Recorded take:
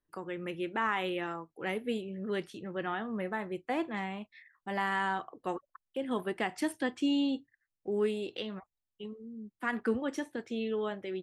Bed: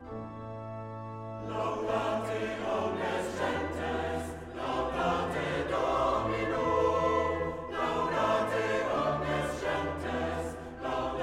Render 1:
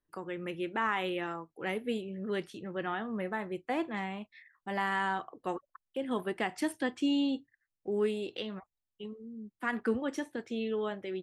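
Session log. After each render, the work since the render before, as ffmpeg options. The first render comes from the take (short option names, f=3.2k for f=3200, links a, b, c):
-af anull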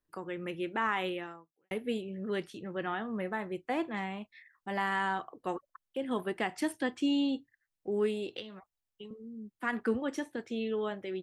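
-filter_complex "[0:a]asettb=1/sr,asplit=3[a][b][c];[a]atrim=end=8.394[d];[b]atrim=start=8.39:end=9.11,asetpts=PTS-STARTPTS,afade=t=in:d=0.004:c=qsin,afade=t=out:st=0.716:d=0.004:c=qsin,acrossover=split=300|2800[e][f][g];[e]acompressor=threshold=-52dB:ratio=4[h];[f]acompressor=threshold=-48dB:ratio=4[i];[g]acompressor=threshold=-46dB:ratio=4[j];[h][i][j]amix=inputs=3:normalize=0[k];[c]atrim=start=9.106[l];[d][k]acrossfade=d=0.004:c1=hsin:c2=qsin[m];[m][l]acrossfade=d=0.004:c1=qsin:c2=hsin,asplit=2[n][o];[n]atrim=end=1.71,asetpts=PTS-STARTPTS,afade=t=out:st=1.07:d=0.64:c=qua[p];[o]atrim=start=1.71,asetpts=PTS-STARTPTS,afade=t=in:d=0.004:c=hsin[q];[p][q]concat=n=2:v=0:a=1"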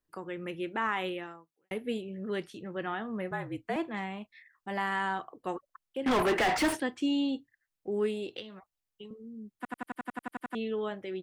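-filter_complex "[0:a]asettb=1/sr,asplit=3[a][b][c];[a]atrim=end=3.314[d];[b]atrim=start=3.31:end=3.76,asetpts=PTS-STARTPTS,afade=t=in:d=0.004:c=qsin,afade=t=out:st=0.446:d=0.004:c=qsin,afreqshift=-49[e];[c]atrim=start=3.756[f];[d][e]acrossfade=d=0.004:c1=hsin:c2=qsin[g];[g][f]acrossfade=d=0.004:c1=qsin:c2=hsin,asettb=1/sr,asplit=3[h][i][j];[h]atrim=end=6.064[k];[i]atrim=start=6.06:end=6.8,asetpts=PTS-STARTPTS,afade=t=in:d=0.004:c=qsin,afade=t=out:st=0.736:d=0.004:c=qsin,asplit=2[l][m];[m]highpass=f=720:p=1,volume=38dB,asoftclip=type=tanh:threshold=-18.5dB[n];[l][n]amix=inputs=2:normalize=0,lowpass=f=2.2k:p=1,volume=-6dB[o];[j]atrim=start=6.796[p];[k][o]acrossfade=d=0.004:c1=hsin:c2=qsin[q];[q][p]acrossfade=d=0.004:c1=qsin:c2=hsin,asplit=12[r][s][t][u][v][w][x][y][z][aa][ab][ac];[r]atrim=end=9.652[ad];[s]atrim=start=9.558:end=9.652[ae];[t]atrim=start=9.558:end=9.652[af];[u]atrim=start=9.558:end=9.652[ag];[v]atrim=start=9.558:end=9.652[ah];[w]atrim=start=9.558:end=9.652[ai];[x]atrim=start=9.558:end=9.652[aj];[y]atrim=start=9.558:end=9.652[ak];[z]atrim=start=9.558:end=9.652[al];[aa]atrim=start=9.558:end=9.652[am];[ab]atrim=start=9.558:end=9.652[an];[ac]atrim=start=10.548[ao];[ad][ae]acrossfade=d=0.004:c1=hsin:c2=hsin[ap];[ap][af]acrossfade=d=0.004:c1=hsin:c2=hsin[aq];[aq][ag]acrossfade=d=0.004:c1=hsin:c2=hsin[ar];[ar][ah]acrossfade=d=0.004:c1=hsin:c2=hsin[as];[as][ai]acrossfade=d=0.004:c1=hsin:c2=hsin[at];[at][aj]acrossfade=d=0.004:c1=hsin:c2=hsin[au];[au][ak]acrossfade=d=0.004:c1=hsin:c2=hsin[av];[av][al]acrossfade=d=0.004:c1=hsin:c2=hsin[aw];[aw][am]acrossfade=d=0.004:c1=hsin:c2=hsin[ax];[ax][an]acrossfade=d=0.004:c1=hsin:c2=hsin[ay];[ay][ao]acrossfade=d=0.004:c1=hsin:c2=hsin"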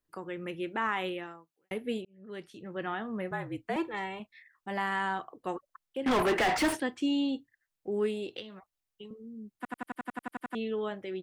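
-filter_complex "[0:a]asettb=1/sr,asplit=3[a][b][c];[a]atrim=end=3.764[d];[b]atrim=start=3.76:end=4.2,asetpts=PTS-STARTPTS,afade=t=in:d=0.004:c=qsin,afade=t=out:st=0.436:d=0.004:c=qsin,aecho=1:1:2.2:0.81,atrim=end_sample=19404[e];[c]atrim=start=4.196[f];[d][e]acrossfade=d=0.004:c1=hsin:c2=qsin[g];[g][f]acrossfade=d=0.004:c1=qsin:c2=hsin,asplit=2[h][i];[h]atrim=end=2.05,asetpts=PTS-STARTPTS,afade=t=out:st=2.046:d=0.004:c=hsin[j];[i]atrim=start=2.05,asetpts=PTS-STARTPTS,afade=t=in:d=0.79[k];[j][k]concat=n=2:v=0:a=1"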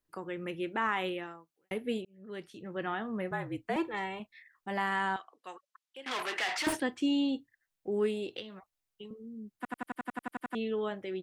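-filter_complex "[0:a]asettb=1/sr,asplit=3[a][b][c];[a]atrim=end=5.164[d];[b]atrim=start=5.16:end=6.67,asetpts=PTS-STARTPTS,afade=t=in:d=0.004:c=qsin,afade=t=out:st=1.506:d=0.004:c=qsin,bandpass=f=4.1k:t=q:w=0.54[e];[c]atrim=start=6.666[f];[d][e]acrossfade=d=0.004:c1=hsin:c2=qsin[g];[g][f]acrossfade=d=0.004:c1=qsin:c2=hsin"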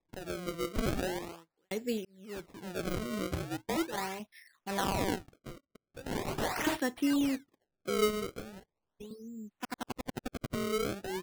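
-af "acrusher=samples=29:mix=1:aa=0.000001:lfo=1:lforange=46.4:lforate=0.4"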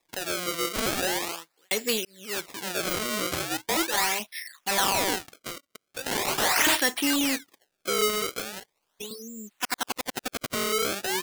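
-filter_complex "[0:a]asplit=2[a][b];[b]highpass=f=720:p=1,volume=17dB,asoftclip=type=tanh:threshold=-18.5dB[c];[a][c]amix=inputs=2:normalize=0,lowpass=f=3.7k:p=1,volume=-6dB,crystalizer=i=6:c=0"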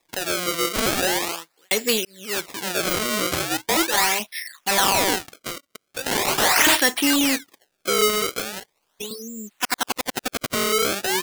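-af "volume=5.5dB,alimiter=limit=-3dB:level=0:latency=1"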